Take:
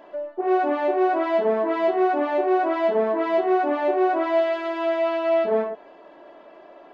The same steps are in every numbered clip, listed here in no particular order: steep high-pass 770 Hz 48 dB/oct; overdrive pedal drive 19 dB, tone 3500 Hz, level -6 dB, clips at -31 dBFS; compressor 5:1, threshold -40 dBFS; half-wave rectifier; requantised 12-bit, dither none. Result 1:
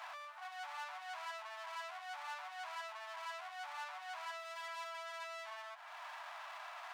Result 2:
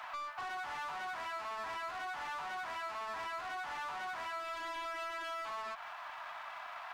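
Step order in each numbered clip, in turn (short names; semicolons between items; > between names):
requantised > compressor > overdrive pedal > half-wave rectifier > steep high-pass; half-wave rectifier > steep high-pass > overdrive pedal > requantised > compressor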